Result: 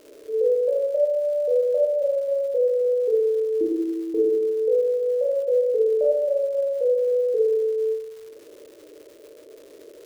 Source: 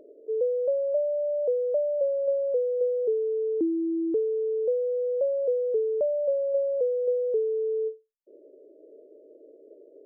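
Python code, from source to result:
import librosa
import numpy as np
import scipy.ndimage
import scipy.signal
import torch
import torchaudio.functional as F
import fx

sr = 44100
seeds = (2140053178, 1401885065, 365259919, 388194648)

y = fx.rev_schroeder(x, sr, rt60_s=1.2, comb_ms=26, drr_db=-6.5)
y = fx.dmg_crackle(y, sr, seeds[0], per_s=450.0, level_db=-39.0)
y = F.gain(torch.from_numpy(y), -2.0).numpy()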